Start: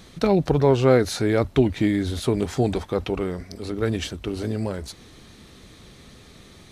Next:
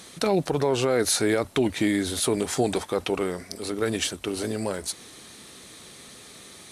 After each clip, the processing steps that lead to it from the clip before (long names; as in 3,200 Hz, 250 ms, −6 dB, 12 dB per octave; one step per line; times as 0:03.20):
high-pass filter 390 Hz 6 dB per octave
parametric band 9,500 Hz +11 dB 0.88 octaves
brickwall limiter −15.5 dBFS, peak gain reduction 8.5 dB
level +3 dB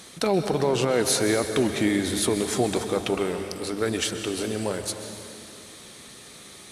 dense smooth reverb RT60 2.7 s, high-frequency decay 0.9×, pre-delay 115 ms, DRR 7 dB